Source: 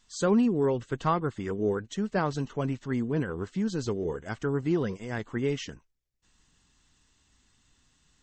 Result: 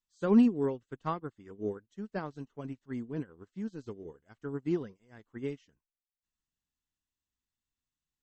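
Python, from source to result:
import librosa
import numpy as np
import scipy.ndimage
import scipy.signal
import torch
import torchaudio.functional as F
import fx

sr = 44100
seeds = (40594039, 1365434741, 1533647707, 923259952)

y = fx.dynamic_eq(x, sr, hz=280.0, q=1.9, threshold_db=-38.0, ratio=4.0, max_db=4)
y = fx.upward_expand(y, sr, threshold_db=-36.0, expansion=2.5)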